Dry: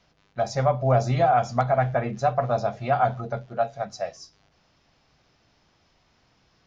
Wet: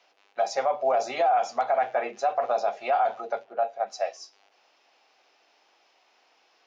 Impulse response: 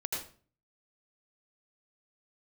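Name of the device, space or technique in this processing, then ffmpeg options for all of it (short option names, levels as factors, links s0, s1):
laptop speaker: -filter_complex "[0:a]asplit=3[s0][s1][s2];[s0]afade=t=out:st=3.43:d=0.02[s3];[s1]lowpass=f=1400:p=1,afade=t=in:st=3.43:d=0.02,afade=t=out:st=3.86:d=0.02[s4];[s2]afade=t=in:st=3.86:d=0.02[s5];[s3][s4][s5]amix=inputs=3:normalize=0,highpass=f=370:w=0.5412,highpass=f=370:w=1.3066,equalizer=f=790:t=o:w=0.38:g=6,equalizer=f=2600:t=o:w=0.49:g=5.5,alimiter=limit=0.168:level=0:latency=1:release=25"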